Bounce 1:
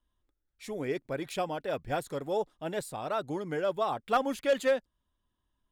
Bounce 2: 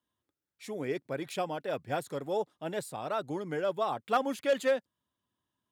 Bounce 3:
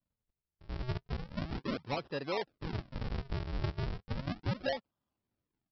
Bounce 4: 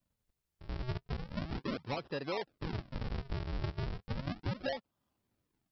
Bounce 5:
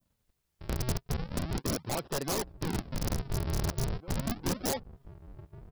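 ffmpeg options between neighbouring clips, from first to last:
ffmpeg -i in.wav -af "highpass=frequency=98:width=0.5412,highpass=frequency=98:width=1.3066,volume=-1dB" out.wav
ffmpeg -i in.wav -af "equalizer=frequency=1700:width=1.5:gain=-8,acompressor=threshold=-31dB:ratio=6,aresample=11025,acrusher=samples=25:mix=1:aa=0.000001:lfo=1:lforange=40:lforate=0.35,aresample=44100" out.wav
ffmpeg -i in.wav -af "acompressor=threshold=-45dB:ratio=2,volume=5.5dB" out.wav
ffmpeg -i in.wav -filter_complex "[0:a]asplit=2[link_01][link_02];[link_02]adelay=1749,volume=-18dB,highshelf=frequency=4000:gain=-39.4[link_03];[link_01][link_03]amix=inputs=2:normalize=0,aeval=exprs='(mod(37.6*val(0)+1,2)-1)/37.6':channel_layout=same,adynamicequalizer=threshold=0.00178:dfrequency=2300:dqfactor=0.74:tfrequency=2300:tqfactor=0.74:attack=5:release=100:ratio=0.375:range=2:mode=cutabove:tftype=bell,volume=6.5dB" out.wav

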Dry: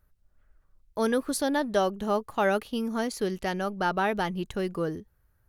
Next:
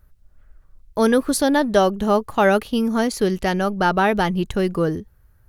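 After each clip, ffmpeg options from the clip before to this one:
ffmpeg -i in.wav -af "lowshelf=frequency=170:gain=5.5,volume=8dB" out.wav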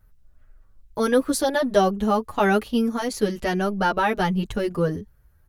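ffmpeg -i in.wav -filter_complex "[0:a]asplit=2[link_01][link_02];[link_02]adelay=7.4,afreqshift=1.6[link_03];[link_01][link_03]amix=inputs=2:normalize=1" out.wav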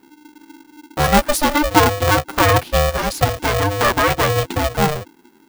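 ffmpeg -i in.wav -af "aeval=exprs='val(0)*sgn(sin(2*PI*300*n/s))':channel_layout=same,volume=5.5dB" out.wav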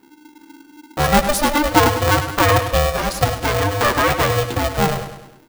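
ffmpeg -i in.wav -af "aecho=1:1:101|202|303|404|505:0.316|0.155|0.0759|0.0372|0.0182,volume=-1dB" out.wav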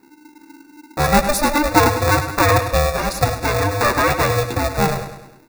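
ffmpeg -i in.wav -af "asuperstop=centerf=3100:order=20:qfactor=5.1" out.wav

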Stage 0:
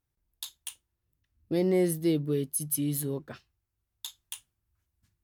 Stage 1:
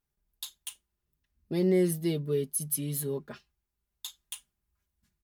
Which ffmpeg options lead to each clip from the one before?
ffmpeg -i in.wav -af "aecho=1:1:4.9:0.65,volume=-2dB" out.wav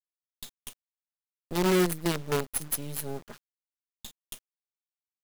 ffmpeg -i in.wav -af "acrusher=bits=5:dc=4:mix=0:aa=0.000001" out.wav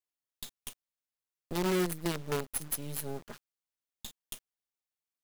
ffmpeg -i in.wav -af "acompressor=threshold=-36dB:ratio=1.5" out.wav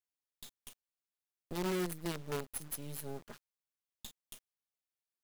ffmpeg -i in.wav -af "alimiter=limit=-23.5dB:level=0:latency=1:release=35,volume=-4.5dB" out.wav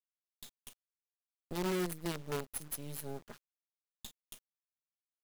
ffmpeg -i in.wav -af "aeval=exprs='sgn(val(0))*max(abs(val(0))-0.00119,0)':channel_layout=same,volume=1dB" out.wav

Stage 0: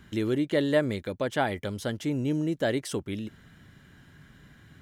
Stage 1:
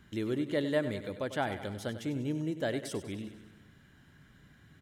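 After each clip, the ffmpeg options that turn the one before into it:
ffmpeg -i in.wav -af "aecho=1:1:97|194|291|388|485|582|679:0.251|0.148|0.0874|0.0516|0.0304|0.018|0.0106,volume=-6dB" out.wav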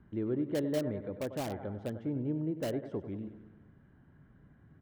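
ffmpeg -i in.wav -filter_complex "[0:a]lowpass=1000,acrossover=split=730[link_01][link_02];[link_02]aeval=exprs='(mod(89.1*val(0)+1,2)-1)/89.1':channel_layout=same[link_03];[link_01][link_03]amix=inputs=2:normalize=0" out.wav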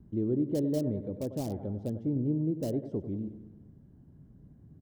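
ffmpeg -i in.wav -af "firequalizer=gain_entry='entry(210,0);entry(1500,-22);entry(5000,-5)':delay=0.05:min_phase=1,volume=5.5dB" out.wav

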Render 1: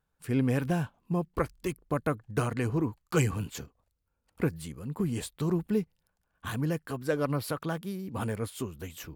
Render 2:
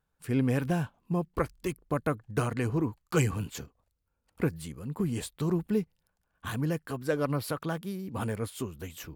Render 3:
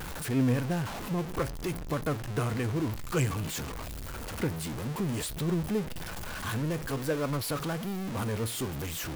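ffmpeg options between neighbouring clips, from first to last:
ffmpeg -i in.wav -af anull out.wav
ffmpeg -i in.wav -af "aeval=exprs='val(0)+0.5*0.0447*sgn(val(0))':channel_layout=same,flanger=delay=5.5:depth=4.7:regen=84:speed=0.55:shape=triangular" out.wav

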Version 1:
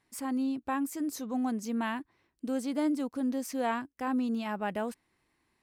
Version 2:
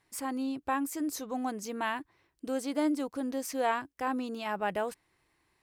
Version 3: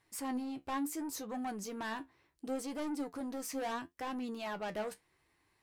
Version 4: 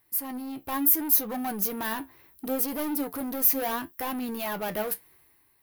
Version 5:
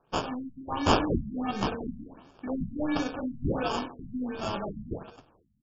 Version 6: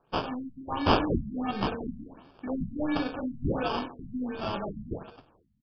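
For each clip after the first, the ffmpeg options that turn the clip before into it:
ffmpeg -i in.wav -af "equalizer=frequency=230:width=3.8:gain=-11.5,volume=2.5dB" out.wav
ffmpeg -i in.wav -af "asoftclip=type=tanh:threshold=-32.5dB,flanger=delay=8.4:depth=7:regen=55:speed=0.71:shape=triangular,volume=2.5dB" out.wav
ffmpeg -i in.wav -filter_complex "[0:a]dynaudnorm=framelen=110:gausssize=11:maxgain=10dB,asplit=2[link_01][link_02];[link_02]aeval=exprs='0.0178*(abs(mod(val(0)/0.0178+3,4)-2)-1)':channel_layout=same,volume=-7dB[link_03];[link_01][link_03]amix=inputs=2:normalize=0,aexciter=amount=13.5:drive=5.7:freq=11000,volume=-2.5dB" out.wav
ffmpeg -i in.wav -af "aecho=1:1:20|50|95|162.5|263.8:0.631|0.398|0.251|0.158|0.1,acrusher=samples=22:mix=1:aa=0.000001,afftfilt=real='re*lt(b*sr/1024,230*pow(7400/230,0.5+0.5*sin(2*PI*1.4*pts/sr)))':imag='im*lt(b*sr/1024,230*pow(7400/230,0.5+0.5*sin(2*PI*1.4*pts/sr)))':win_size=1024:overlap=0.75,volume=-2.5dB" out.wav
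ffmpeg -i in.wav -af "aresample=11025,aresample=44100" out.wav

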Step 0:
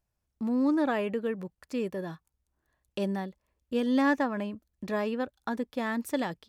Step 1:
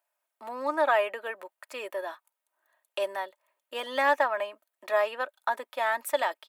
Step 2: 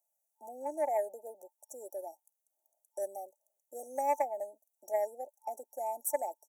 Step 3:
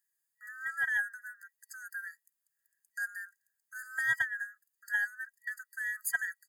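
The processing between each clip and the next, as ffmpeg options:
ffmpeg -i in.wav -af "highpass=frequency=610:width=0.5412,highpass=frequency=610:width=1.3066,equalizer=frequency=5400:width=1.2:gain=-10,aecho=1:1:3.2:0.49,volume=7.5dB" out.wav
ffmpeg -i in.wav -af "afftfilt=real='re*(1-between(b*sr/4096,890,5600))':imag='im*(1-between(b*sr/4096,890,5600))':win_size=4096:overlap=0.75,aeval=exprs='0.2*(cos(1*acos(clip(val(0)/0.2,-1,1)))-cos(1*PI/2))+0.0158*(cos(3*acos(clip(val(0)/0.2,-1,1)))-cos(3*PI/2))':channel_layout=same,tiltshelf=frequency=970:gain=-6.5,volume=-1.5dB" out.wav
ffmpeg -i in.wav -af "afftfilt=real='real(if(lt(b,960),b+48*(1-2*mod(floor(b/48),2)),b),0)':imag='imag(if(lt(b,960),b+48*(1-2*mod(floor(b/48),2)),b),0)':win_size=2048:overlap=0.75" out.wav

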